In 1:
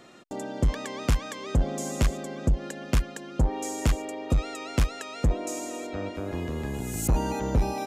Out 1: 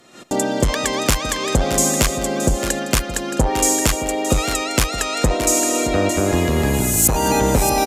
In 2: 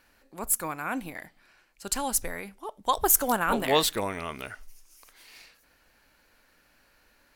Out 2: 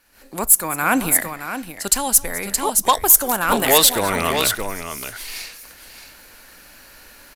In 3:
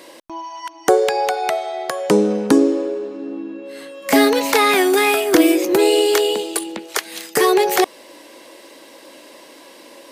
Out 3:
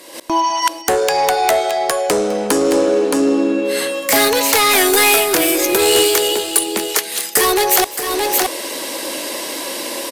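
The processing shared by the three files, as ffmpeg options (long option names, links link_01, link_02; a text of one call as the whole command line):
ffmpeg -i in.wav -filter_complex "[0:a]acrossover=split=420[link_01][link_02];[link_01]acompressor=threshold=-30dB:ratio=6[link_03];[link_03][link_02]amix=inputs=2:normalize=0,aresample=32000,aresample=44100,asoftclip=type=tanh:threshold=-16.5dB,aemphasis=mode=production:type=cd,asplit=2[link_04][link_05];[link_05]aecho=0:1:206|621:0.112|0.266[link_06];[link_04][link_06]amix=inputs=2:normalize=0,dynaudnorm=framelen=120:gausssize=3:maxgain=16.5dB,volume=-1dB" out.wav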